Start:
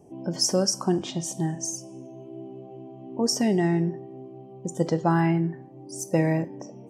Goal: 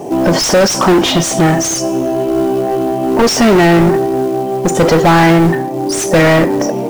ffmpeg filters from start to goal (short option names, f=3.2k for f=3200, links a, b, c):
-filter_complex "[0:a]asplit=2[a][b];[b]highpass=f=720:p=1,volume=33dB,asoftclip=type=tanh:threshold=-10dB[c];[a][c]amix=inputs=2:normalize=0,lowpass=f=2.4k:p=1,volume=-6dB,acrusher=bits=6:mode=log:mix=0:aa=0.000001,volume=8.5dB"